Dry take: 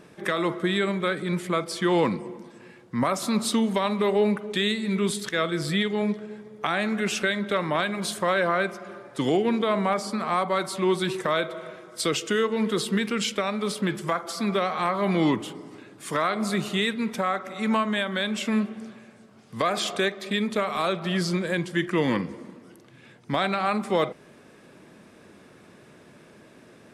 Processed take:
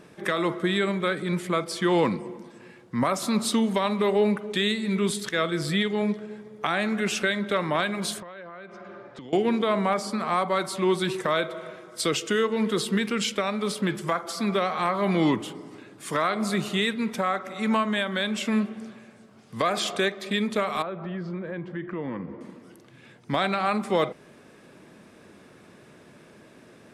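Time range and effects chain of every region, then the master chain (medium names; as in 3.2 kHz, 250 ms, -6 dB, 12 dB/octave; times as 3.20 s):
8.20–9.33 s: distance through air 140 m + compression 10:1, threshold -38 dBFS
20.82–22.41 s: low-pass 1.5 kHz + compression 2.5:1, threshold -32 dBFS
whole clip: none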